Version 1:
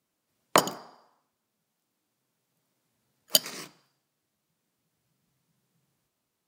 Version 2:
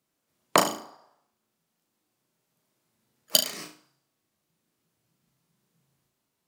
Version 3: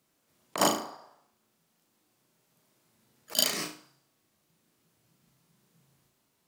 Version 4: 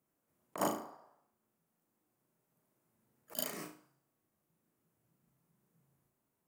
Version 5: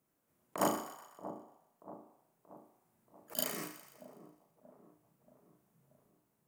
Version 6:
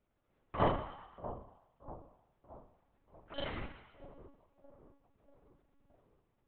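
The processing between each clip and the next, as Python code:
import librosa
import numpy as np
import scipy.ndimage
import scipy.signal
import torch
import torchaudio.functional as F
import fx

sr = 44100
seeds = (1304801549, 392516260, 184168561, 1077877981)

y1 = fx.room_flutter(x, sr, wall_m=6.2, rt60_s=0.36)
y2 = fx.over_compress(y1, sr, threshold_db=-25.0, ratio=-0.5)
y2 = y2 * 10.0 ** (1.5 / 20.0)
y3 = fx.peak_eq(y2, sr, hz=4200.0, db=-14.0, octaves=1.7)
y3 = y3 * 10.0 ** (-7.0 / 20.0)
y4 = fx.echo_split(y3, sr, split_hz=1000.0, low_ms=631, high_ms=124, feedback_pct=52, wet_db=-12.0)
y4 = y4 * 10.0 ** (2.5 / 20.0)
y5 = fx.lpc_monotone(y4, sr, seeds[0], pitch_hz=280.0, order=10)
y5 = y5 * 10.0 ** (2.0 / 20.0)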